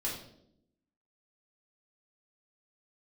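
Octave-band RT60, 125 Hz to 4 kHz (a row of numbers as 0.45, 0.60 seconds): 0.95, 1.1, 0.90, 0.60, 0.50, 0.55 seconds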